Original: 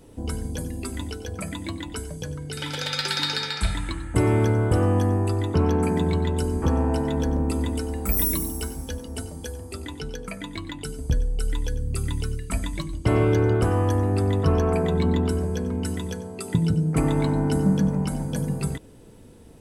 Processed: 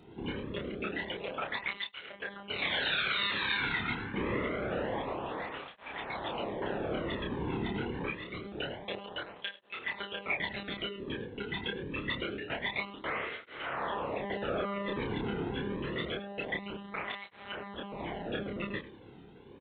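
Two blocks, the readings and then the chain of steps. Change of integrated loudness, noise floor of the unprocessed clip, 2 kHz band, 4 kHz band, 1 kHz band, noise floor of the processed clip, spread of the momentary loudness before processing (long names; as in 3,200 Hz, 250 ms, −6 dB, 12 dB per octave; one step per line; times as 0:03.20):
−10.5 dB, −46 dBFS, +1.5 dB, −4.0 dB, −5.5 dB, −53 dBFS, 13 LU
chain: in parallel at −1 dB: brickwall limiter −21 dBFS, peak gain reduction 11 dB
on the sum: high-pass filter 95 Hz 12 dB per octave
repeating echo 94 ms, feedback 16%, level −17 dB
soft clipping −13.5 dBFS, distortion −18 dB
low-shelf EQ 290 Hz −8.5 dB
floating-point word with a short mantissa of 2 bits
downward compressor 6 to 1, threshold −27 dBFS, peak gain reduction 7.5 dB
dynamic equaliser 2,200 Hz, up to +7 dB, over −48 dBFS, Q 0.95
one-pitch LPC vocoder at 8 kHz 200 Hz
double-tracking delay 29 ms −3 dB
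through-zero flanger with one copy inverted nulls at 0.26 Hz, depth 1.8 ms
level −2 dB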